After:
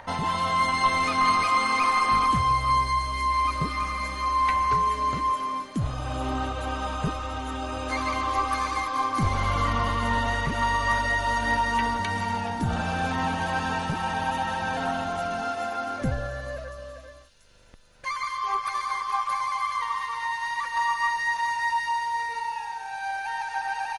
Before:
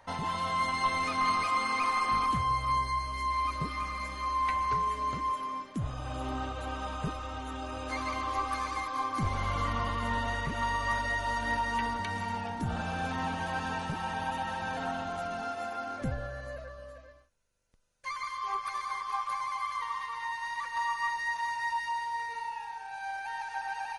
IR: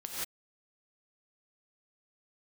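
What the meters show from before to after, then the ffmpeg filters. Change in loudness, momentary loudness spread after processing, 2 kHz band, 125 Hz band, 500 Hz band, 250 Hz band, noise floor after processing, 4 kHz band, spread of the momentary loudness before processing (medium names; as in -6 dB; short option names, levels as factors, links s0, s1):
+6.5 dB, 9 LU, +6.5 dB, +6.5 dB, +6.5 dB, +6.5 dB, -43 dBFS, +7.0 dB, 9 LU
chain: -filter_complex "[0:a]acrossover=split=3100[s0][s1];[s0]acompressor=mode=upward:threshold=0.00501:ratio=2.5[s2];[s1]aecho=1:1:686|1372|2058|2744|3430|4116|4802:0.335|0.194|0.113|0.0654|0.0379|0.022|0.0128[s3];[s2][s3]amix=inputs=2:normalize=0,volume=2.11"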